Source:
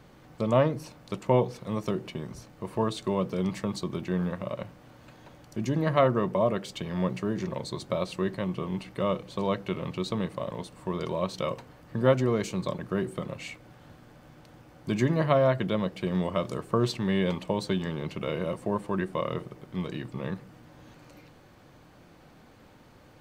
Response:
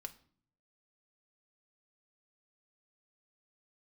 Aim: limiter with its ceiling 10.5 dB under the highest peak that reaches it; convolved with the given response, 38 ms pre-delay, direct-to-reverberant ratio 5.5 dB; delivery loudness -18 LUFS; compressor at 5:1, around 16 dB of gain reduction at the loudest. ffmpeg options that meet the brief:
-filter_complex "[0:a]acompressor=threshold=-35dB:ratio=5,alimiter=level_in=5dB:limit=-24dB:level=0:latency=1,volume=-5dB,asplit=2[a][b];[1:a]atrim=start_sample=2205,adelay=38[c];[b][c]afir=irnorm=-1:irlink=0,volume=-1.5dB[d];[a][d]amix=inputs=2:normalize=0,volume=22.5dB"

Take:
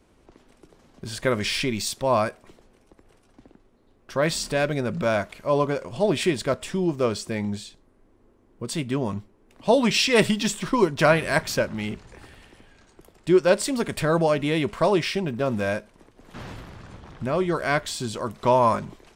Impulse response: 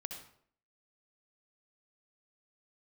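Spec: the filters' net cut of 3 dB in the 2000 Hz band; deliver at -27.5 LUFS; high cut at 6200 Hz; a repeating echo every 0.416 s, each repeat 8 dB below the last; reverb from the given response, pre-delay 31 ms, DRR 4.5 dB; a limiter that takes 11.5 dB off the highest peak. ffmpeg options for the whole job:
-filter_complex "[0:a]lowpass=6.2k,equalizer=f=2k:t=o:g=-4,alimiter=limit=-15.5dB:level=0:latency=1,aecho=1:1:416|832|1248|1664|2080:0.398|0.159|0.0637|0.0255|0.0102,asplit=2[a][b];[1:a]atrim=start_sample=2205,adelay=31[c];[b][c]afir=irnorm=-1:irlink=0,volume=-2.5dB[d];[a][d]amix=inputs=2:normalize=0,volume=-2dB"

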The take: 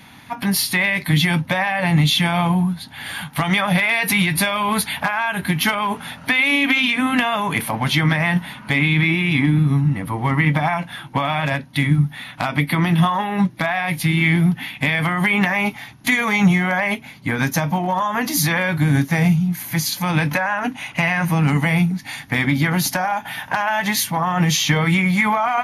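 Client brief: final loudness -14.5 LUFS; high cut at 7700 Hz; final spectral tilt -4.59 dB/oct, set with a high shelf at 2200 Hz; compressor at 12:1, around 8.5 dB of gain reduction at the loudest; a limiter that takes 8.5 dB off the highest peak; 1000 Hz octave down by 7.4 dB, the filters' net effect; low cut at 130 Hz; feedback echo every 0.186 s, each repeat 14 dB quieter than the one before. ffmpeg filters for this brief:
-af "highpass=130,lowpass=7.7k,equalizer=f=1k:t=o:g=-8.5,highshelf=f=2.2k:g=-6,acompressor=threshold=-21dB:ratio=12,alimiter=limit=-19.5dB:level=0:latency=1,aecho=1:1:186|372:0.2|0.0399,volume=13.5dB"

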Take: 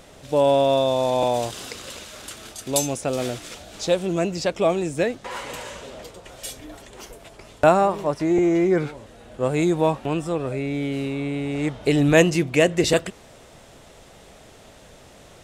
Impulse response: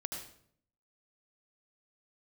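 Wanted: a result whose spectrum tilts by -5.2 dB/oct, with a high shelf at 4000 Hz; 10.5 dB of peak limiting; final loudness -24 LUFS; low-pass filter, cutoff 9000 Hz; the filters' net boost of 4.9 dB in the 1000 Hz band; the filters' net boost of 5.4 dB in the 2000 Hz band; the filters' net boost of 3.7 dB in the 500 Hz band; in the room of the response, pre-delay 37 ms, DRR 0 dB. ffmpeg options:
-filter_complex "[0:a]lowpass=9k,equalizer=f=500:t=o:g=3,equalizer=f=1k:t=o:g=4.5,equalizer=f=2k:t=o:g=7,highshelf=f=4k:g=-7,alimiter=limit=-8.5dB:level=0:latency=1,asplit=2[a][b];[1:a]atrim=start_sample=2205,adelay=37[c];[b][c]afir=irnorm=-1:irlink=0,volume=0dB[d];[a][d]amix=inputs=2:normalize=0,volume=-6.5dB"

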